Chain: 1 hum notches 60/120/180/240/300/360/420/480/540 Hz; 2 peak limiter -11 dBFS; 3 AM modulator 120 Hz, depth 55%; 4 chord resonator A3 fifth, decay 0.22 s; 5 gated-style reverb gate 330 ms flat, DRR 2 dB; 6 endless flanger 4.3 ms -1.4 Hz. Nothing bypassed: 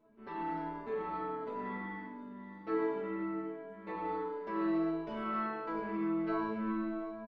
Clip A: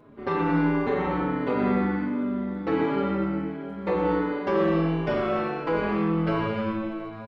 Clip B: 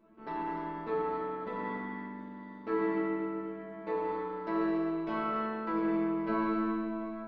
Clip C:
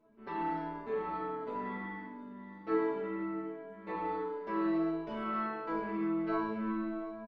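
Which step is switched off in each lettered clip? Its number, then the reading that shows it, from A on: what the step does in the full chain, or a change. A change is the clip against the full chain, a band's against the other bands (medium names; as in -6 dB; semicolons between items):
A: 4, 125 Hz band +9.0 dB; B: 6, loudness change +3.0 LU; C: 2, crest factor change +2.0 dB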